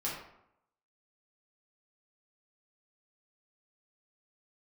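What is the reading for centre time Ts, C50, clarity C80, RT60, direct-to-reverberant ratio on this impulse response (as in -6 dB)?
48 ms, 2.5 dB, 6.0 dB, 0.75 s, -6.5 dB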